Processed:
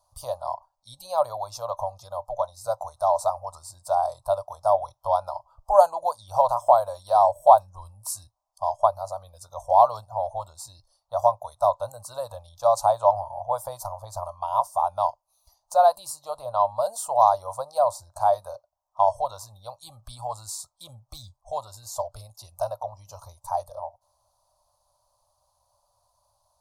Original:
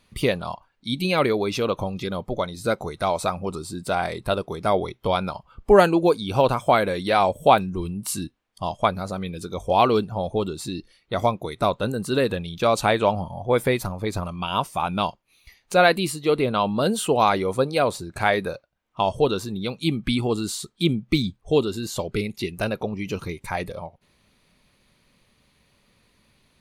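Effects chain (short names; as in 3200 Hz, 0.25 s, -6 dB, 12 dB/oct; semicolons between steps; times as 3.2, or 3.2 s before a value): EQ curve 110 Hz 0 dB, 170 Hz -26 dB, 410 Hz -29 dB, 590 Hz +13 dB, 1000 Hz +14 dB, 2100 Hz -29 dB, 5300 Hz +8 dB; gain -10.5 dB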